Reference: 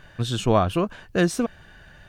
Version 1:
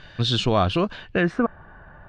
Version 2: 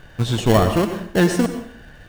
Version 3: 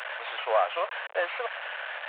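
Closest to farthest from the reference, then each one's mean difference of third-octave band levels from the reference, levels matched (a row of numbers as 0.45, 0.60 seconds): 1, 2, 3; 4.5, 6.5, 17.0 decibels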